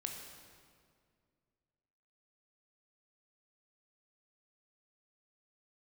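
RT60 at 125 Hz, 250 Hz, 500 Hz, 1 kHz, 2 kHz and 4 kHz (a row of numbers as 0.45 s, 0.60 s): 2.6 s, 2.5 s, 2.3 s, 1.9 s, 1.7 s, 1.5 s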